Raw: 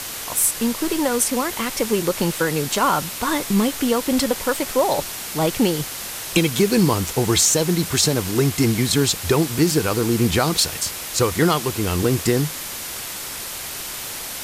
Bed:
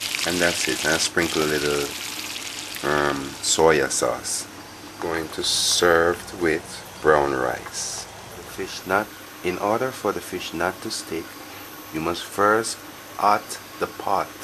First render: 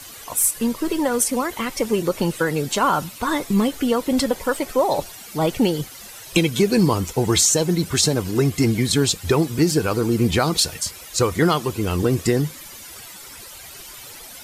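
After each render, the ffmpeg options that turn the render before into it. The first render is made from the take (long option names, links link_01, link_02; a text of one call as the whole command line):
ffmpeg -i in.wav -af "afftdn=noise_reduction=13:noise_floor=-31" out.wav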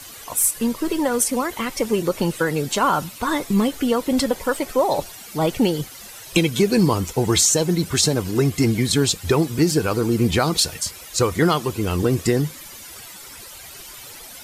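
ffmpeg -i in.wav -af anull out.wav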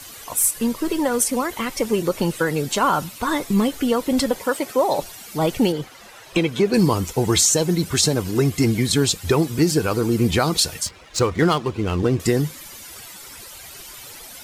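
ffmpeg -i in.wav -filter_complex "[0:a]asettb=1/sr,asplit=3[link_01][link_02][link_03];[link_01]atrim=end=4.384[link_04];[link_02]atrim=start=4.38:end=5.02,asetpts=PTS-STARTPTS,afade=type=in:duration=0.004:curve=qsin,afade=type=out:start_time=0.636:duration=0.004:curve=qsin,highpass=130[link_05];[link_03]atrim=start=5.016[link_06];[link_04][link_05]acrossfade=duration=0.004:curve1=hsin:curve2=qsin[link_07];[link_07][link_06]acrossfade=duration=0.004:curve1=qsin:curve2=hsin,asettb=1/sr,asplit=3[link_08][link_09][link_10];[link_08]atrim=end=5.724[link_11];[link_09]atrim=start=5.72:end=6.74,asetpts=PTS-STARTPTS,afade=type=in:duration=0.004:curve=qsin,afade=type=out:start_time=1.016:duration=0.004:curve=qsin,asplit=2[link_12][link_13];[link_13]highpass=frequency=720:poles=1,volume=11dB,asoftclip=type=tanh:threshold=-3.5dB[link_14];[link_12][link_14]amix=inputs=2:normalize=0,lowpass=frequency=1100:poles=1,volume=-6dB[link_15];[link_10]atrim=start=6.736[link_16];[link_11][link_15]acrossfade=duration=0.004:curve1=hsin:curve2=qsin[link_17];[link_17][link_16]acrossfade=duration=0.004:curve1=qsin:curve2=hsin,asettb=1/sr,asplit=3[link_18][link_19][link_20];[link_18]atrim=end=10.874[link_21];[link_19]atrim=start=10.87:end=12.2,asetpts=PTS-STARTPTS,afade=type=in:duration=0.004:curve=qsin,afade=type=out:start_time=1.326:duration=0.004:curve=qsin,adynamicsmooth=sensitivity=5.5:basefreq=2300[link_22];[link_20]atrim=start=12.196[link_23];[link_21][link_22]acrossfade=duration=0.004:curve1=hsin:curve2=qsin[link_24];[link_24][link_23]acrossfade=duration=0.004:curve1=qsin:curve2=hsin" out.wav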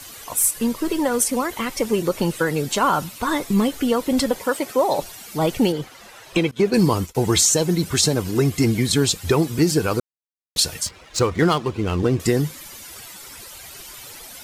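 ffmpeg -i in.wav -filter_complex "[0:a]asettb=1/sr,asplit=3[link_01][link_02][link_03];[link_01]atrim=end=6.514[link_04];[link_02]atrim=start=6.51:end=7.15,asetpts=PTS-STARTPTS,afade=type=in:duration=0.004:curve=qsin,afade=type=out:start_time=0.636:duration=0.004:curve=qsin,agate=range=-33dB:threshold=-23dB:ratio=3:release=100:detection=peak[link_05];[link_03]atrim=start=7.146[link_06];[link_04][link_05]acrossfade=duration=0.004:curve1=hsin:curve2=qsin[link_07];[link_07][link_06]acrossfade=duration=0.004:curve1=qsin:curve2=hsin,asplit=3[link_08][link_09][link_10];[link_08]atrim=end=10,asetpts=PTS-STARTPTS,afade=type=out:start_time=9.996:duration=0.004:curve=hsin[link_11];[link_09]atrim=start=10:end=10.56,asetpts=PTS-STARTPTS,volume=0[link_12];[link_10]atrim=start=10.56,asetpts=PTS-STARTPTS,afade=type=in:duration=0.004:curve=hsin[link_13];[link_11][link_12][link_13]concat=n=3:v=0:a=1" out.wav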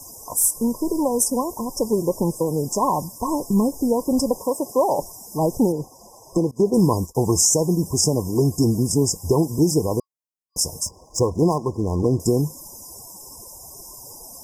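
ffmpeg -i in.wav -af "afftfilt=real='re*(1-between(b*sr/4096,1100,4900))':imag='im*(1-between(b*sr/4096,1100,4900))':win_size=4096:overlap=0.75" out.wav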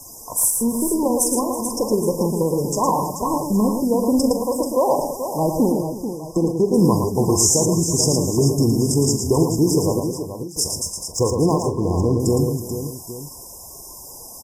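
ffmpeg -i in.wav -filter_complex "[0:a]asplit=2[link_01][link_02];[link_02]adelay=43,volume=-12dB[link_03];[link_01][link_03]amix=inputs=2:normalize=0,aecho=1:1:66|113|325|435|816:0.141|0.531|0.168|0.355|0.168" out.wav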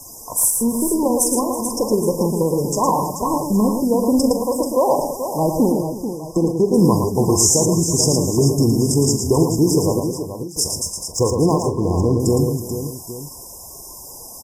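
ffmpeg -i in.wav -af "volume=1.5dB" out.wav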